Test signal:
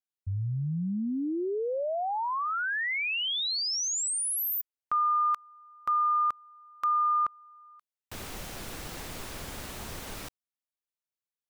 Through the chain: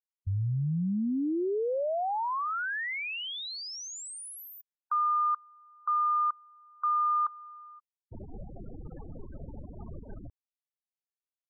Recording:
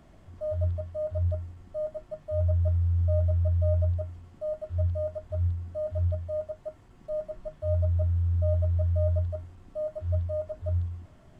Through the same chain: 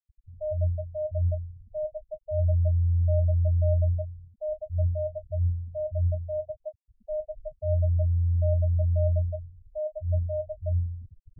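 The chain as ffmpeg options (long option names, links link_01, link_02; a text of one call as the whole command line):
ffmpeg -i in.wav -af "afftfilt=real='re*gte(hypot(re,im),0.0251)':imag='im*gte(hypot(re,im),0.0251)':win_size=1024:overlap=0.75,lowpass=frequency=1300:poles=1,areverse,acompressor=mode=upward:threshold=-39dB:ratio=2.5:attack=6.6:release=937:knee=2.83:detection=peak,areverse,volume=1.5dB" out.wav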